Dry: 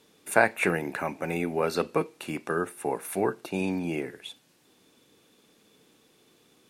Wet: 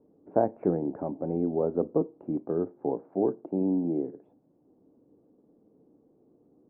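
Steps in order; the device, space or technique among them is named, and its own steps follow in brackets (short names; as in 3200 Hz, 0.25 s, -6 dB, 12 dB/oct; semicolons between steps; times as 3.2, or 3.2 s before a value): under water (LPF 710 Hz 24 dB/oct; bell 290 Hz +6 dB 0.39 oct); 3.03–4.29 HPF 140 Hz 12 dB/oct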